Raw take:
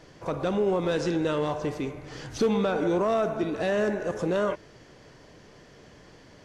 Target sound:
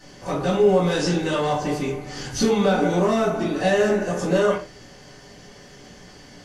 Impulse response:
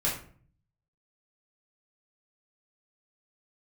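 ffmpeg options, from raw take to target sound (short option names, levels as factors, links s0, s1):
-filter_complex "[0:a]bass=f=250:g=-5,treble=f=4000:g=9[s0];[1:a]atrim=start_sample=2205,afade=t=out:st=0.23:d=0.01,atrim=end_sample=10584,asetrate=57330,aresample=44100[s1];[s0][s1]afir=irnorm=-1:irlink=0"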